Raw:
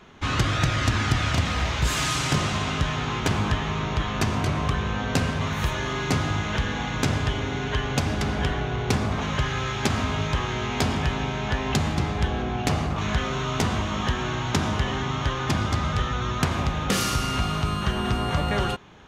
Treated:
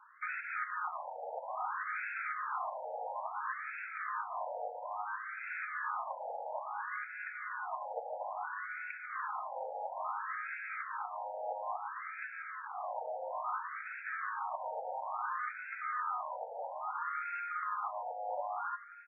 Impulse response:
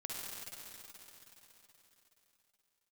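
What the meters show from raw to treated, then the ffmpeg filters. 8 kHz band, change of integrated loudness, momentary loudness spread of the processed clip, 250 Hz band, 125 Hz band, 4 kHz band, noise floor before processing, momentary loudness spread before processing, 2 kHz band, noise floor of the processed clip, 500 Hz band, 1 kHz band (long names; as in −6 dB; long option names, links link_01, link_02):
below −40 dB, −14.0 dB, 4 LU, below −40 dB, below −40 dB, below −40 dB, −29 dBFS, 4 LU, −10.5 dB, −46 dBFS, −13.0 dB, −7.5 dB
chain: -filter_complex "[0:a]asplit=2[link_01][link_02];[link_02]acrusher=bits=6:mix=0:aa=0.000001,volume=-12dB[link_03];[link_01][link_03]amix=inputs=2:normalize=0,highshelf=frequency=7600:gain=9,acrossover=split=290|2600[link_04][link_05][link_06];[link_06]acrusher=samples=21:mix=1:aa=0.000001:lfo=1:lforange=12.6:lforate=0.26[link_07];[link_04][link_05][link_07]amix=inputs=3:normalize=0,highpass=140,alimiter=limit=-18dB:level=0:latency=1:release=281,aecho=1:1:246|492|738|984|1230:0.158|0.0903|0.0515|0.0294|0.0167,afftfilt=real='re*between(b*sr/1024,640*pow(1900/640,0.5+0.5*sin(2*PI*0.59*pts/sr))/1.41,640*pow(1900/640,0.5+0.5*sin(2*PI*0.59*pts/sr))*1.41)':imag='im*between(b*sr/1024,640*pow(1900/640,0.5+0.5*sin(2*PI*0.59*pts/sr))/1.41,640*pow(1900/640,0.5+0.5*sin(2*PI*0.59*pts/sr))*1.41)':win_size=1024:overlap=0.75,volume=-4dB"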